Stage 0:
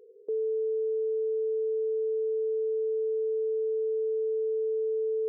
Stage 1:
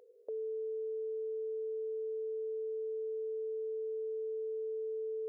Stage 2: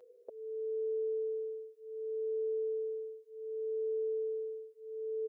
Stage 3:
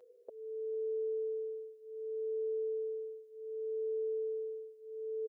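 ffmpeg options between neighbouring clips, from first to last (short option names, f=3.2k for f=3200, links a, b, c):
-af "lowshelf=f=500:t=q:w=3:g=-8,volume=1dB"
-filter_complex "[0:a]asplit=2[a][b];[b]adelay=6,afreqshift=0.67[c];[a][c]amix=inputs=2:normalize=1,volume=4dB"
-af "aecho=1:1:450:0.106,volume=-1.5dB"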